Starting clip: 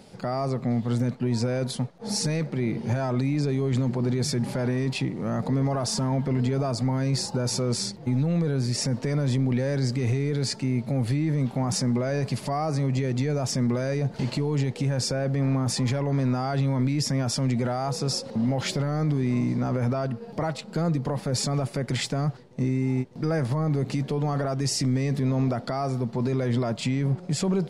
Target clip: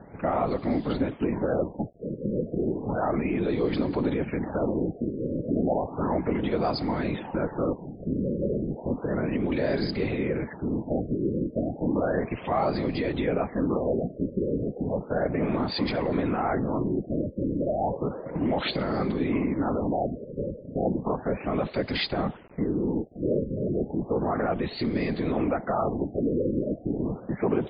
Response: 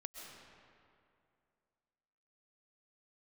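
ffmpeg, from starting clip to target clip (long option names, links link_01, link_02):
-filter_complex "[0:a]afftfilt=real='hypot(re,im)*cos(2*PI*random(0))':imag='hypot(re,im)*sin(2*PI*random(1))':win_size=512:overlap=0.75,acrossover=split=250[link_01][link_02];[link_01]acompressor=threshold=-45dB:ratio=4[link_03];[link_03][link_02]amix=inputs=2:normalize=0,acrusher=bits=9:mix=0:aa=0.000001,afftfilt=real='re*lt(b*sr/1024,590*pow(5100/590,0.5+0.5*sin(2*PI*0.33*pts/sr)))':imag='im*lt(b*sr/1024,590*pow(5100/590,0.5+0.5*sin(2*PI*0.33*pts/sr)))':win_size=1024:overlap=0.75,volume=9dB"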